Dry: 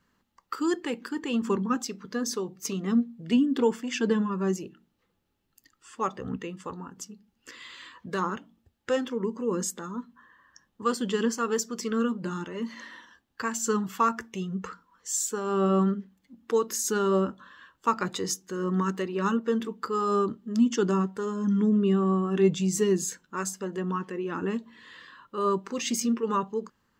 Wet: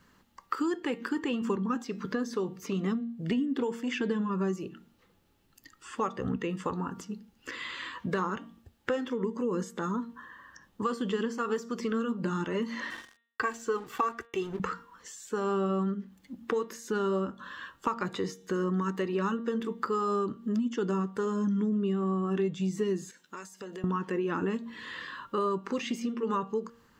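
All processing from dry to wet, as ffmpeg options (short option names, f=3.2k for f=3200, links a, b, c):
-filter_complex "[0:a]asettb=1/sr,asplit=3[a][b][c];[a]atrim=end=12.904[d];[b]atrim=start=12.9:end=14.6,asetpts=PTS-STARTPTS,afade=t=in:d=0.004:c=qsin,afade=t=out:st=1.696:d=0.004:c=qsin,aecho=1:1:2.6:0.85,atrim=end_sample=74970,aeval=exprs='sgn(val(0))*max(abs(val(0))-0.00316,0)':c=same[e];[c]atrim=start=14.596[f];[d][e]acrossfade=d=0.004:c1=hsin:c2=qsin[g];[g][f]acrossfade=d=0.004:c1=qsin:c2=hsin,asettb=1/sr,asplit=3[h][i][j];[h]atrim=end=23.114[k];[i]atrim=start=23.11:end=23.84,asetpts=PTS-STARTPTS,afade=t=in:d=0.004:c=qsin,afade=t=out:st=0.726:d=0.004:c=qsin,highpass=f=800:p=1,equalizer=f=1.2k:t=o:w=1.5:g=-7,acompressor=threshold=-45dB:ratio=12:attack=3.2:release=140:knee=1:detection=peak[l];[j]atrim=start=23.836[m];[k][l]acrossfade=d=0.004:c1=hsin:c2=qsin[n];[n][m]acrossfade=d=0.004:c1=qsin:c2=hsin,acompressor=threshold=-36dB:ratio=6,bandreject=f=232.6:t=h:w=4,bandreject=f=465.2:t=h:w=4,bandreject=f=697.8:t=h:w=4,bandreject=f=930.4:t=h:w=4,bandreject=f=1.163k:t=h:w=4,bandreject=f=1.3956k:t=h:w=4,bandreject=f=1.6282k:t=h:w=4,bandreject=f=1.8608k:t=h:w=4,bandreject=f=2.0934k:t=h:w=4,bandreject=f=2.326k:t=h:w=4,bandreject=f=2.5586k:t=h:w=4,bandreject=f=2.7912k:t=h:w=4,bandreject=f=3.0238k:t=h:w=4,bandreject=f=3.2564k:t=h:w=4,bandreject=f=3.489k:t=h:w=4,bandreject=f=3.7216k:t=h:w=4,bandreject=f=3.9542k:t=h:w=4,acrossover=split=3100[o][p];[p]acompressor=threshold=-58dB:ratio=4:attack=1:release=60[q];[o][q]amix=inputs=2:normalize=0,volume=8.5dB"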